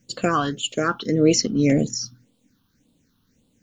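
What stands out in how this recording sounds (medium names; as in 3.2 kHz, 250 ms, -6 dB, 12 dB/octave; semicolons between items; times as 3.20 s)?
a quantiser's noise floor 12-bit, dither none; phasing stages 6, 1.8 Hz, lowest notch 530–1700 Hz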